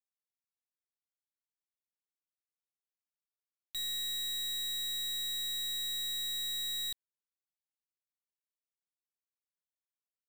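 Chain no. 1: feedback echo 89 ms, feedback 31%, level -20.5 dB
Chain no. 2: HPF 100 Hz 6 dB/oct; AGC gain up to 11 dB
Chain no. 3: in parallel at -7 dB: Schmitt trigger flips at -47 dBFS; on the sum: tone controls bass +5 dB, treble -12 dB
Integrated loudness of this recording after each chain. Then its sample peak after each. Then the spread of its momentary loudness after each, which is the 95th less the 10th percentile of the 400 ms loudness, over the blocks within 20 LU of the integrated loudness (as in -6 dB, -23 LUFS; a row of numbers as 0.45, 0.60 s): -34.0, -22.5, -38.0 LUFS; -35.0, -23.0, -33.5 dBFS; 3, 3, 3 LU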